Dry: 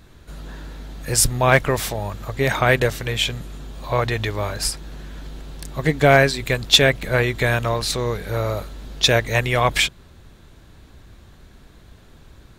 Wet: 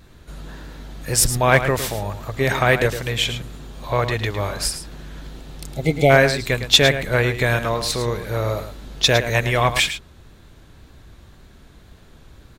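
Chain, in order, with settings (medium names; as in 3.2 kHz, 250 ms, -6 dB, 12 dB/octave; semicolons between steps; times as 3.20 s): spectral replace 5.36–6.08 s, 880–2000 Hz before; wow and flutter 24 cents; delay 108 ms -10.5 dB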